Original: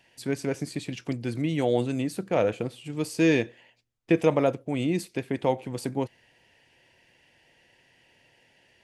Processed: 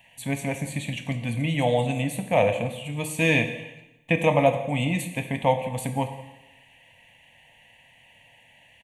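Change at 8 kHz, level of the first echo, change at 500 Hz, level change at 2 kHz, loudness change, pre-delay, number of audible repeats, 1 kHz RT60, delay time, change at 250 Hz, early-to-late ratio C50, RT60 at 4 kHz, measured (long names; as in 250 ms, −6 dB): +5.0 dB, −20.0 dB, +1.5 dB, +7.5 dB, +2.5 dB, 5 ms, 1, 1.0 s, 173 ms, −1.0 dB, 9.0 dB, 0.95 s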